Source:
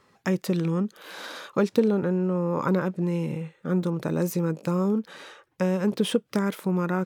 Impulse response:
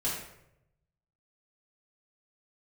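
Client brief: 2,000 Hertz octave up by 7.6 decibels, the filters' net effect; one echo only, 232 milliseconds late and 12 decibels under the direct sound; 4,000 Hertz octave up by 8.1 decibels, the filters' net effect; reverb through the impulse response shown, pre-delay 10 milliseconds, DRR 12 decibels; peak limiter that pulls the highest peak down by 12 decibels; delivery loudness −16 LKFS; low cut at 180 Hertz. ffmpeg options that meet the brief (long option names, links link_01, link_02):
-filter_complex "[0:a]highpass=180,equalizer=frequency=2000:width_type=o:gain=9,equalizer=frequency=4000:width_type=o:gain=7,alimiter=limit=-19.5dB:level=0:latency=1,aecho=1:1:232:0.251,asplit=2[link_01][link_02];[1:a]atrim=start_sample=2205,adelay=10[link_03];[link_02][link_03]afir=irnorm=-1:irlink=0,volume=-18dB[link_04];[link_01][link_04]amix=inputs=2:normalize=0,volume=13.5dB"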